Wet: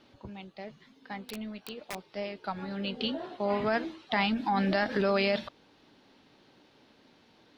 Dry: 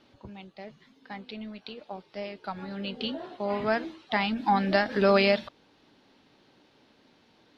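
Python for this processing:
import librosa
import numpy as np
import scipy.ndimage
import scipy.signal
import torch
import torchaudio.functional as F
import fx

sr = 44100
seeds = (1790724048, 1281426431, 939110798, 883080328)

p1 = fx.over_compress(x, sr, threshold_db=-26.0, ratio=-0.5)
p2 = x + (p1 * librosa.db_to_amplitude(1.0))
p3 = fx.overflow_wrap(p2, sr, gain_db=22.0, at=(1.18, 2.1))
y = p3 * librosa.db_to_amplitude(-7.5)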